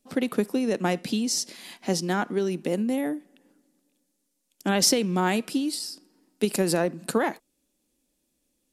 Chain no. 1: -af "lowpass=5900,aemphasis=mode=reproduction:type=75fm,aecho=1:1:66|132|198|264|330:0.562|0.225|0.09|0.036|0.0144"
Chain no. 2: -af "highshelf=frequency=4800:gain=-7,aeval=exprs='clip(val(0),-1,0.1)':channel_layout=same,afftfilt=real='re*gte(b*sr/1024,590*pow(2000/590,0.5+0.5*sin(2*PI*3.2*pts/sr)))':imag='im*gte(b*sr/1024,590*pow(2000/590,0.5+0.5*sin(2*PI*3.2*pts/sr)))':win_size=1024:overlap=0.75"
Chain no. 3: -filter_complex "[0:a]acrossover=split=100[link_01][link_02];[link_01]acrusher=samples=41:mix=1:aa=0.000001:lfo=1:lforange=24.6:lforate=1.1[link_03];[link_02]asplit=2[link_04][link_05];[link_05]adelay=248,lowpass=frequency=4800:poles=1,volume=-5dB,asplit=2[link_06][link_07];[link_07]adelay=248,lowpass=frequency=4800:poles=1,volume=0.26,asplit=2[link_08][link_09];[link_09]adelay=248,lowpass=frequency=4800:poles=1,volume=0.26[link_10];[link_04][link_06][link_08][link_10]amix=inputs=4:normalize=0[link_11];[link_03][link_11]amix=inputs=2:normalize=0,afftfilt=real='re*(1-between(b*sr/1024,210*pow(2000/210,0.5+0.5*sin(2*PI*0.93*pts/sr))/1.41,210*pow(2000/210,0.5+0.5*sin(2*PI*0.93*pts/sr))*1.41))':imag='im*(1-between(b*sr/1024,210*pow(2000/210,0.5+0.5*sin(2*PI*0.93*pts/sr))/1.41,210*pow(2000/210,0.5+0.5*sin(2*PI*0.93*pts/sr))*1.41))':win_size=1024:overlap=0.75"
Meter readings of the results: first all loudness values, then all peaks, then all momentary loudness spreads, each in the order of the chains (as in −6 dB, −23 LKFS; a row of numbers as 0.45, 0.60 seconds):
−25.0, −35.0, −26.5 LKFS; −9.0, −14.0, −8.0 dBFS; 12, 16, 13 LU